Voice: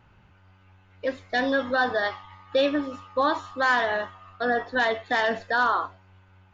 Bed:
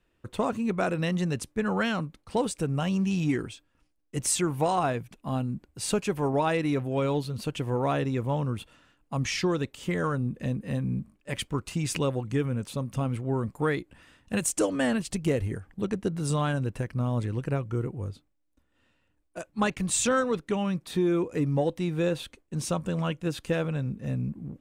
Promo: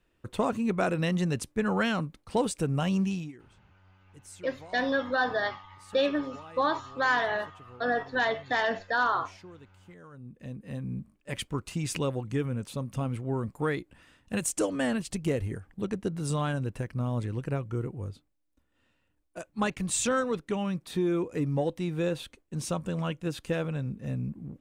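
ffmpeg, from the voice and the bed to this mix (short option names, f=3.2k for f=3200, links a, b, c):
-filter_complex "[0:a]adelay=3400,volume=-3.5dB[a];[1:a]volume=20dB,afade=t=out:st=3:d=0.32:silence=0.0749894,afade=t=in:st=10.1:d=1.2:silence=0.1[b];[a][b]amix=inputs=2:normalize=0"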